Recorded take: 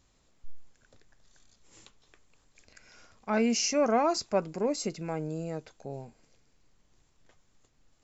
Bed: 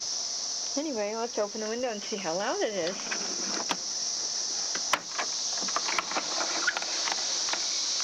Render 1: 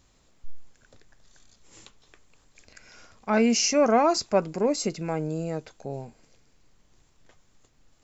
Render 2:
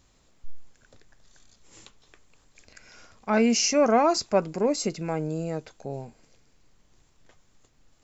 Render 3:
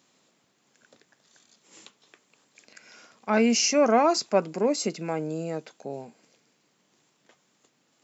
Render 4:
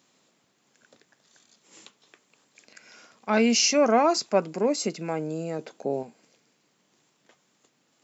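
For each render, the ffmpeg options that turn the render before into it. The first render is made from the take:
-af "volume=5dB"
-af anull
-af "highpass=f=170:w=0.5412,highpass=f=170:w=1.3066,equalizer=f=2.9k:w=1.5:g=2"
-filter_complex "[0:a]asettb=1/sr,asplit=3[a][b][c];[a]atrim=end=3.294[d];[b]atrim=start=3.29:end=3.77,asetpts=PTS-STARTPTS,afade=t=in:d=0.004:c=qsin,afade=t=out:st=0.476:d=0.004:c=qsin,equalizer=f=3.7k:w=1.8:g=6.5[e];[c]atrim=start=3.766[f];[d][e]acrossfade=d=0.004:c1=hsin:c2=qsin[g];[g][f]acrossfade=d=0.004:c1=qsin:c2=hsin,asettb=1/sr,asplit=3[h][i][j];[h]atrim=end=5.594[k];[i]atrim=start=5.59:end=6.03,asetpts=PTS-STARTPTS,afade=t=in:d=0.004:c=qsin,afade=t=out:st=0.436:d=0.004:c=qsin,equalizer=f=380:w=0.49:g=8.5[l];[j]atrim=start=6.026[m];[k][l]acrossfade=d=0.004:c1=hsin:c2=qsin[n];[n][m]acrossfade=d=0.004:c1=qsin:c2=hsin"

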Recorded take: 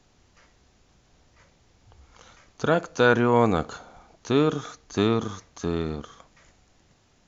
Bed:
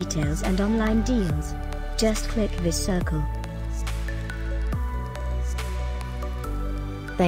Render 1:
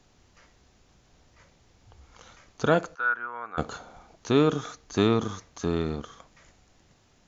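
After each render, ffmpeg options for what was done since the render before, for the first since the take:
-filter_complex "[0:a]asplit=3[a][b][c];[a]afade=t=out:st=2.94:d=0.02[d];[b]bandpass=f=1.4k:t=q:w=6.9,afade=t=in:st=2.94:d=0.02,afade=t=out:st=3.57:d=0.02[e];[c]afade=t=in:st=3.57:d=0.02[f];[d][e][f]amix=inputs=3:normalize=0"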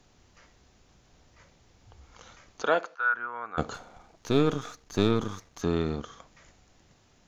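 -filter_complex "[0:a]asettb=1/sr,asplit=3[a][b][c];[a]atrim=end=2.624[d];[b]atrim=start=2.62:end=3.14,asetpts=PTS-STARTPTS,afade=t=in:d=0.004:c=qsin,afade=t=out:st=0.516:d=0.004:c=qsin,highpass=510,lowpass=4.5k[e];[c]atrim=start=3.136[f];[d][e]acrossfade=d=0.004:c1=hsin:c2=qsin[g];[g][f]acrossfade=d=0.004:c1=qsin:c2=hsin,asettb=1/sr,asplit=3[h][i][j];[h]atrim=end=3.744[k];[i]atrim=start=3.74:end=5.62,asetpts=PTS-STARTPTS,afade=t=in:d=0.004:c=qsin,afade=t=out:st=1.876:d=0.004:c=qsin,aeval=exprs='if(lt(val(0),0),0.447*val(0),val(0))':c=same[l];[j]atrim=start=5.616[m];[k][l]acrossfade=d=0.004:c1=hsin:c2=qsin[n];[n][m]acrossfade=d=0.004:c1=qsin:c2=hsin"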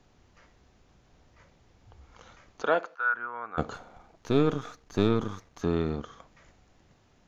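-af "highshelf=f=4.1k:g=-9.5"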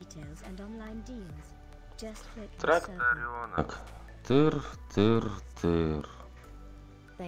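-filter_complex "[1:a]volume=-20dB[a];[0:a][a]amix=inputs=2:normalize=0"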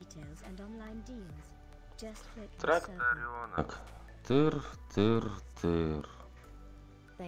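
-af "volume=-3.5dB"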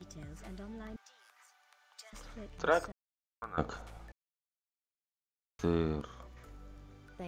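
-filter_complex "[0:a]asettb=1/sr,asplit=3[a][b][c];[a]atrim=end=0.964[d];[b]atrim=start=0.96:end=2.13,asetpts=PTS-STARTPTS,afade=t=in:d=0.004:c=qsin,afade=t=out:st=1.166:d=0.004:c=qsin,highpass=f=930:w=0.5412,highpass=f=930:w=1.3066[e];[c]atrim=start=2.126[f];[d][e]acrossfade=d=0.004:c1=hsin:c2=qsin[g];[g][f]acrossfade=d=0.004:c1=qsin:c2=hsin,asplit=5[h][i][j][k][l];[h]atrim=end=2.92,asetpts=PTS-STARTPTS,afade=t=out:st=2.916:d=0.004:c=hsin[m];[i]atrim=start=2.92:end=3.42,asetpts=PTS-STARTPTS,volume=0[n];[j]atrim=start=3.42:end=4.12,asetpts=PTS-STARTPTS,afade=t=in:d=0.004:c=hsin,afade=t=out:st=0.696:d=0.004:c=hsin[o];[k]atrim=start=4.12:end=5.59,asetpts=PTS-STARTPTS,volume=0[p];[l]atrim=start=5.59,asetpts=PTS-STARTPTS,afade=t=in:d=0.004:c=hsin[q];[m][n][o][p][q]concat=n=5:v=0:a=1"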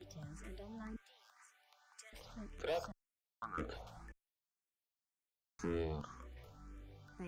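-filter_complex "[0:a]asoftclip=type=tanh:threshold=-31.5dB,asplit=2[a][b];[b]afreqshift=1.9[c];[a][c]amix=inputs=2:normalize=1"

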